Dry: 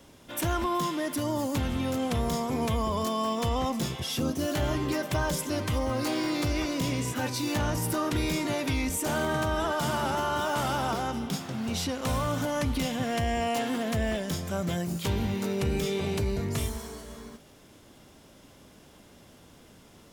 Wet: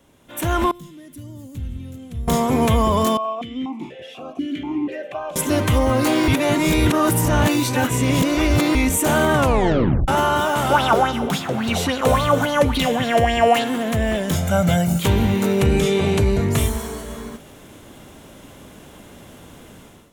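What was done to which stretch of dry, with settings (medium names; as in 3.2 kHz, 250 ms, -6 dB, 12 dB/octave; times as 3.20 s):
0.71–2.28 s: amplifier tone stack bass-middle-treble 10-0-1
3.17–5.36 s: stepped vowel filter 4.1 Hz
6.28–8.75 s: reverse
9.34 s: tape stop 0.74 s
10.70–13.64 s: sweeping bell 3.6 Hz 430–4300 Hz +14 dB
14.35–15.00 s: comb 1.4 ms
15.66–16.50 s: low-pass 11 kHz
whole clip: peaking EQ 5 kHz -8.5 dB 0.47 oct; level rider gain up to 14 dB; trim -2.5 dB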